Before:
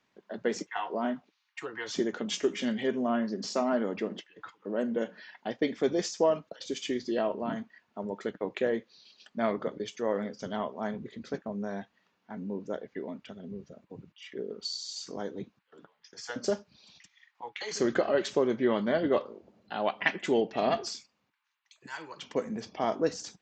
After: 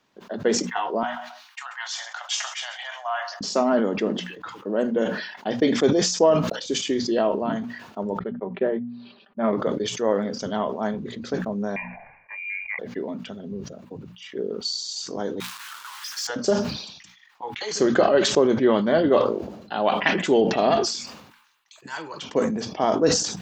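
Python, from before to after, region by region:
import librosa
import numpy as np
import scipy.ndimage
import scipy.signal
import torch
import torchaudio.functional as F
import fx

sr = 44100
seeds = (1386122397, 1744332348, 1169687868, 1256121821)

y = fx.chain(x, sr, fx.steep_highpass(hz=700.0, slope=72),
    fx.echo_feedback(ms=134, feedback_pct=25, wet_db=-19), at=(1.03, 3.41))
y = fx.chain(y, sr, fx.gaussian_blur(sigma=3.4),
    fx.comb(ms=5.1, depth=0.52),
    fx.upward_expand(threshold_db=-44.0, expansion=2.5), at=(8.19, 9.53))
y = fx.chain(y, sr, fx.freq_invert(carrier_hz=2600),
    fx.fixed_phaser(hz=1300.0, stages=6), at=(11.76, 12.79))
y = fx.chain(y, sr, fx.zero_step(step_db=-45.5),
    fx.steep_highpass(hz=950.0, slope=48),
    fx.leveller(passes=2), at=(15.4, 16.27))
y = fx.peak_eq(y, sr, hz=2100.0, db=-5.0, octaves=0.6)
y = fx.hum_notches(y, sr, base_hz=60, count=4)
y = fx.sustainer(y, sr, db_per_s=62.0)
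y = y * librosa.db_to_amplitude(7.5)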